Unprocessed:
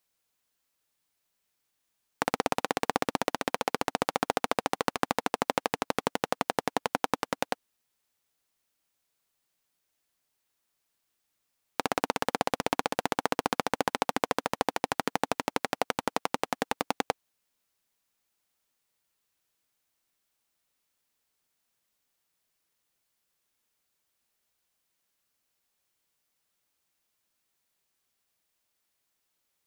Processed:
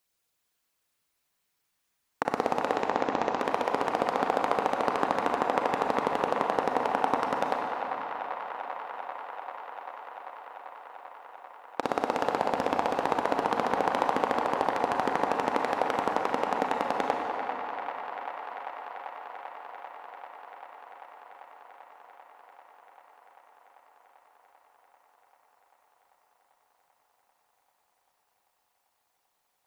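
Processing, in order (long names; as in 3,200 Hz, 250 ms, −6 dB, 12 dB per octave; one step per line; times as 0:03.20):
spectral envelope exaggerated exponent 1.5
0:02.75–0:03.39: Chebyshev low-pass filter 7,100 Hz, order 4
delay with a band-pass on its return 392 ms, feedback 84%, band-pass 1,400 Hz, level −7 dB
on a send at −3 dB: convolution reverb RT60 3.2 s, pre-delay 31 ms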